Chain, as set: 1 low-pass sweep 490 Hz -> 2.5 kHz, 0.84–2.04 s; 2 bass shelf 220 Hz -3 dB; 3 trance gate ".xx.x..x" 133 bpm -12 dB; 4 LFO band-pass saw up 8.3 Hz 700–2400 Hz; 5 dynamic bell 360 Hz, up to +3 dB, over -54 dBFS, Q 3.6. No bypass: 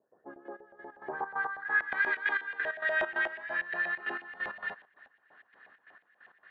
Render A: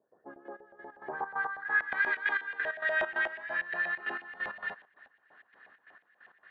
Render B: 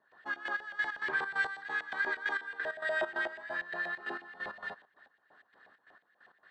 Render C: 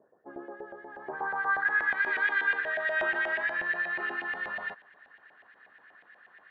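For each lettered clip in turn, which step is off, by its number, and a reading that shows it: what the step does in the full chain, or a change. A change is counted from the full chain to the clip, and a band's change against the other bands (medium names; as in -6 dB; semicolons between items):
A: 5, 250 Hz band -2.0 dB; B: 1, 4 kHz band +4.0 dB; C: 3, crest factor change -3.0 dB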